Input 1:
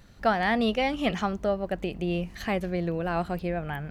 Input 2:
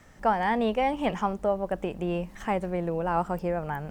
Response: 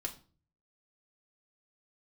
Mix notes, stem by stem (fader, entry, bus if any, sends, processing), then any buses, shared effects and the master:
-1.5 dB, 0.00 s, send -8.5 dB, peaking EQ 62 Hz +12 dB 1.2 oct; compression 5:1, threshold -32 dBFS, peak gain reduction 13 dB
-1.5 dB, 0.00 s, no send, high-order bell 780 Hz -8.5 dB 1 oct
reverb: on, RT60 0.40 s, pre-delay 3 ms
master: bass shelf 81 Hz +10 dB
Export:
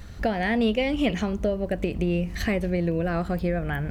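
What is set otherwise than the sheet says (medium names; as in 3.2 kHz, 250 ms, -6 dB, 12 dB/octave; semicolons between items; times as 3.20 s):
stem 1 -1.5 dB -> +5.5 dB; master: missing bass shelf 81 Hz +10 dB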